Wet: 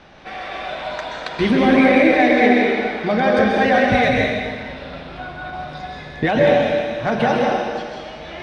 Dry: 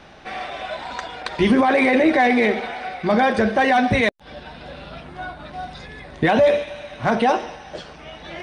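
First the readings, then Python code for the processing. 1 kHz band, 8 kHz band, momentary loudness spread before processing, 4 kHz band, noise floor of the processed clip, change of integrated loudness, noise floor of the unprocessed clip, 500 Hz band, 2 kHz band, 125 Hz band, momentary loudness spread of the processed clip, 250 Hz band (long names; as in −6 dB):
+1.0 dB, can't be measured, 21 LU, +2.5 dB, −35 dBFS, +2.0 dB, −43 dBFS, +3.0 dB, +2.5 dB, +3.0 dB, 19 LU, +3.0 dB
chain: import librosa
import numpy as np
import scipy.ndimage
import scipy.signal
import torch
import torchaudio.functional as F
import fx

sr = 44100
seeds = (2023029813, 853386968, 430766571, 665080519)

y = scipy.signal.sosfilt(scipy.signal.butter(2, 6300.0, 'lowpass', fs=sr, output='sos'), x)
y = fx.dynamic_eq(y, sr, hz=1000.0, q=3.4, threshold_db=-36.0, ratio=4.0, max_db=-6)
y = fx.rev_plate(y, sr, seeds[0], rt60_s=1.7, hf_ratio=0.95, predelay_ms=115, drr_db=-2.0)
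y = F.gain(torch.from_numpy(y), -1.0).numpy()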